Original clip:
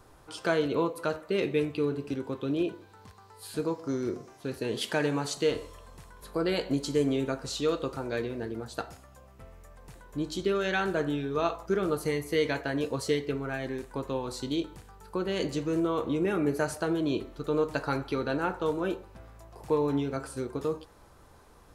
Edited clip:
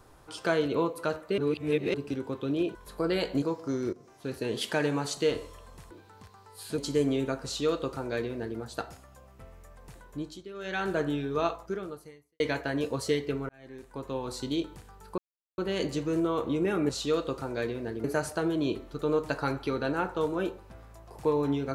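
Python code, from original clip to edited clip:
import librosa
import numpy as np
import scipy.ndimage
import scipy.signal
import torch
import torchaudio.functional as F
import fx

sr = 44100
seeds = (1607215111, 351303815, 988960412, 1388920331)

y = fx.edit(x, sr, fx.reverse_span(start_s=1.38, length_s=0.56),
    fx.swap(start_s=2.75, length_s=0.87, other_s=6.11, other_length_s=0.67),
    fx.fade_in_from(start_s=4.13, length_s=0.47, curve='qsin', floor_db=-17.5),
    fx.duplicate(start_s=7.44, length_s=1.15, to_s=16.49),
    fx.fade_down_up(start_s=10.03, length_s=0.9, db=-16.0, fade_s=0.4),
    fx.fade_out_span(start_s=11.45, length_s=0.95, curve='qua'),
    fx.fade_in_span(start_s=13.49, length_s=0.82),
    fx.insert_silence(at_s=15.18, length_s=0.4), tone=tone)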